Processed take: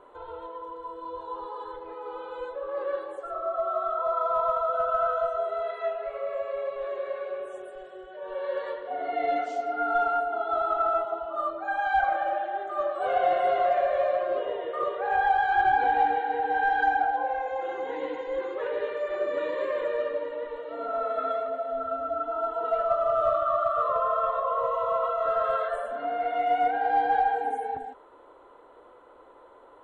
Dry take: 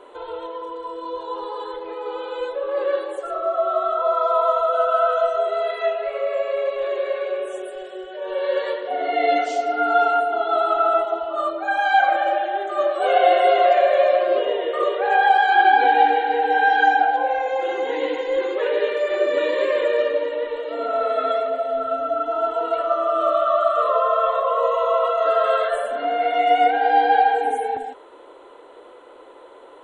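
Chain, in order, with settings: 22.63–23.35 s: comb 4.7 ms, depth 91%; in parallel at -10 dB: overload inside the chain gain 14 dB; on the sum: FFT filter 130 Hz 0 dB, 370 Hz -13 dB, 1.2 kHz -7 dB, 2.7 kHz -17 dB

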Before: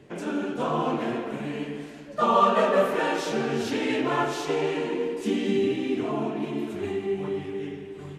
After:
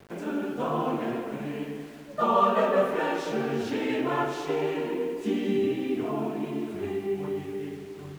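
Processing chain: bit crusher 8-bit; treble shelf 3.1 kHz -7.5 dB; trim -1.5 dB

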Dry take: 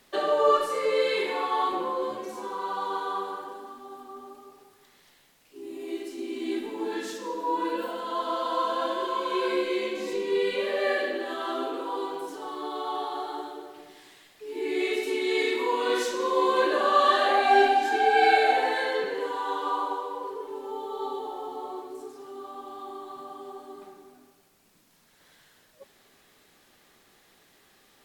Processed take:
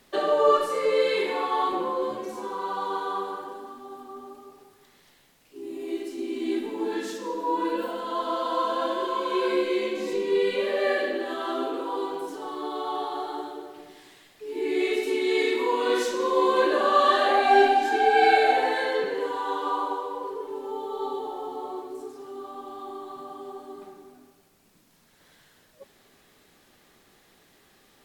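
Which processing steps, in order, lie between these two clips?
bass shelf 460 Hz +4.5 dB

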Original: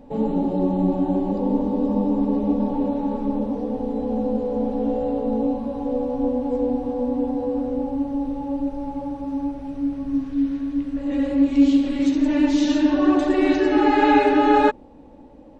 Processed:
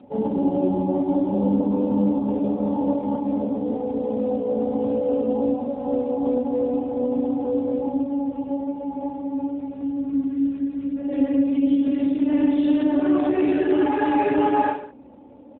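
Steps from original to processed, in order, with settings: 2.27–2.87 s: hum notches 50/100/150/200/250 Hz; peak limiter -13 dBFS, peak gain reduction 8.5 dB; comb of notches 160 Hz; on a send: reverse bouncing-ball echo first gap 30 ms, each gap 1.15×, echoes 5; on the sum: AMR-NB 7.4 kbps 8 kHz

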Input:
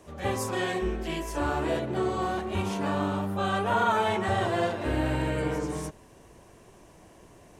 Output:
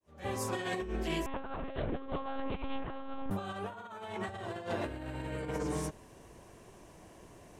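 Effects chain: fade-in on the opening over 0.62 s; 1.26–3.31 s: monotone LPC vocoder at 8 kHz 270 Hz; compressor with a negative ratio -31 dBFS, ratio -0.5; trim -5 dB

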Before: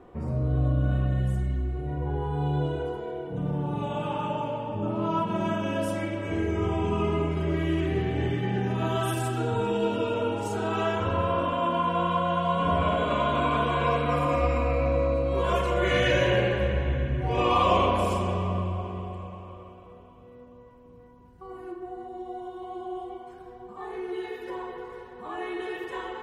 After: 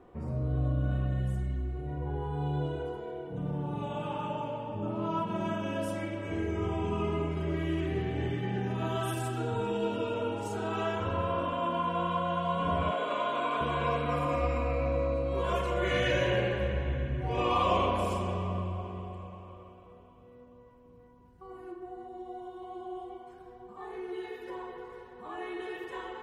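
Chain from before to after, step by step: 12.91–13.61 s: high-pass 340 Hz 12 dB/octave; trim -5 dB

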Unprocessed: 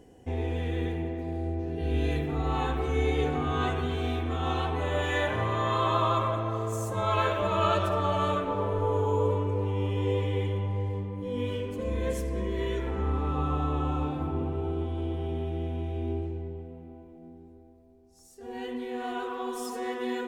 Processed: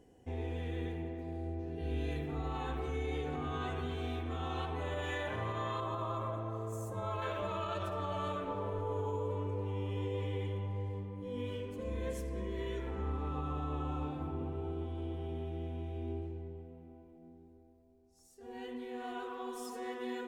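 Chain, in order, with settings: 5.80–7.22 s: peaking EQ 3.2 kHz -8 dB 2.4 oct; peak limiter -20.5 dBFS, peak gain reduction 8 dB; trim -8 dB

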